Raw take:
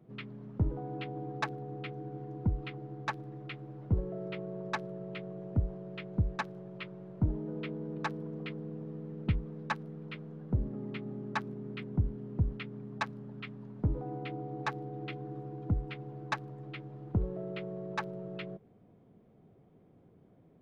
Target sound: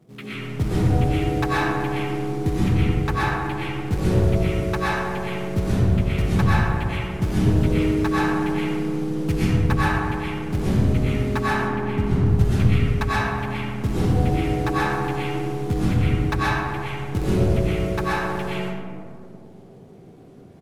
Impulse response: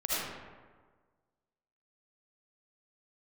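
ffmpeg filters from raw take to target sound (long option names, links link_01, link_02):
-filter_complex "[0:a]asplit=4[link_01][link_02][link_03][link_04];[link_02]adelay=126,afreqshift=32,volume=-20dB[link_05];[link_03]adelay=252,afreqshift=64,volume=-28.6dB[link_06];[link_04]adelay=378,afreqshift=96,volume=-37.3dB[link_07];[link_01][link_05][link_06][link_07]amix=inputs=4:normalize=0,acrusher=bits=4:mode=log:mix=0:aa=0.000001,asettb=1/sr,asplit=3[link_08][link_09][link_10];[link_08]atrim=end=11.544[link_11];[link_09]atrim=start=11.54:end=12.26,asetpts=PTS-STARTPTS,afade=type=in:duration=0.004:curve=qsin,afade=type=out:start_time=0.716:duration=0.004:curve=qsin,highshelf=frequency=2800:gain=-10.5[link_12];[link_10]atrim=start=12.256[link_13];[link_11][link_12]acrossfade=duration=0.004:curve1=hsin:curve2=qsin[link_14];[link_14][link_13]acrossfade=duration=0.004:curve1=qsin:curve2=hsin[link_15];[1:a]atrim=start_sample=2205,asetrate=26460,aresample=44100[link_16];[link_15][link_16]afir=irnorm=-1:irlink=0,volume=3dB"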